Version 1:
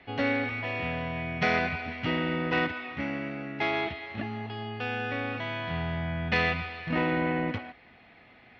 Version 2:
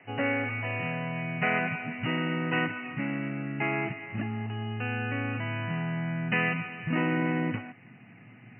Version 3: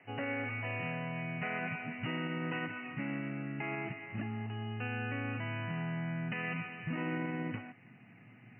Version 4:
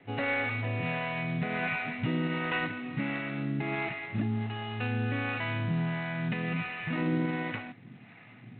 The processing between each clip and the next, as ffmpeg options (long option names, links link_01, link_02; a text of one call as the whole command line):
ffmpeg -i in.wav -filter_complex "[0:a]afftfilt=real='re*between(b*sr/4096,100,3000)':imag='im*between(b*sr/4096,100,3000)':win_size=4096:overlap=0.75,asubboost=boost=8:cutoff=190,acrossover=split=290|2300[link_01][link_02][link_03];[link_01]acompressor=threshold=-34dB:ratio=6[link_04];[link_04][link_02][link_03]amix=inputs=3:normalize=0" out.wav
ffmpeg -i in.wav -af "alimiter=limit=-22dB:level=0:latency=1:release=84,volume=-5.5dB" out.wav
ffmpeg -i in.wav -filter_complex "[0:a]acrossover=split=500[link_01][link_02];[link_01]aeval=exprs='val(0)*(1-0.7/2+0.7/2*cos(2*PI*1.4*n/s))':channel_layout=same[link_03];[link_02]aeval=exprs='val(0)*(1-0.7/2-0.7/2*cos(2*PI*1.4*n/s))':channel_layout=same[link_04];[link_03][link_04]amix=inputs=2:normalize=0,acontrast=36,volume=4dB" -ar 8000 -c:a adpcm_g726 -b:a 24k out.wav